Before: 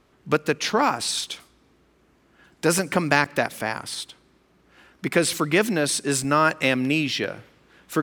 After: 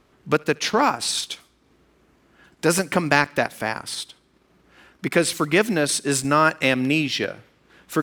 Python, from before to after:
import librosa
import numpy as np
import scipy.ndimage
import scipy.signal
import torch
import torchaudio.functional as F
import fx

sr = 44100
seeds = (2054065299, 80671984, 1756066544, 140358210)

y = fx.echo_thinned(x, sr, ms=70, feedback_pct=38, hz=1100.0, wet_db=-21.0)
y = fx.transient(y, sr, attack_db=-1, sustain_db=-5)
y = F.gain(torch.from_numpy(y), 2.0).numpy()